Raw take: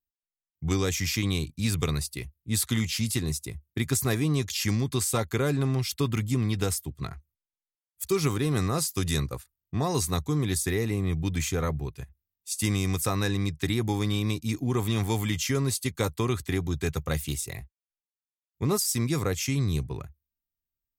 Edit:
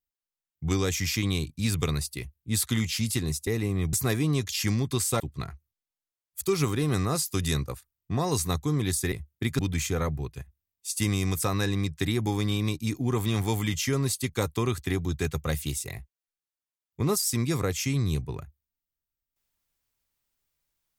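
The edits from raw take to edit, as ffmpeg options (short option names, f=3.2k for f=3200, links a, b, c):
-filter_complex "[0:a]asplit=6[a][b][c][d][e][f];[a]atrim=end=3.472[g];[b]atrim=start=10.748:end=11.212[h];[c]atrim=start=3.938:end=5.212[i];[d]atrim=start=6.828:end=10.752[j];[e]atrim=start=3.468:end=3.942[k];[f]atrim=start=11.208[l];[g][h]acrossfade=d=0.004:c1=hsin:c2=hsin[m];[m][i]acrossfade=d=0.004:c1=hsin:c2=hsin[n];[n][j]acrossfade=d=0.004:c1=hsin:c2=hsin[o];[o][k]acrossfade=d=0.004:c1=hsin:c2=hsin[p];[p][l]acrossfade=d=0.004:c1=hsin:c2=hsin"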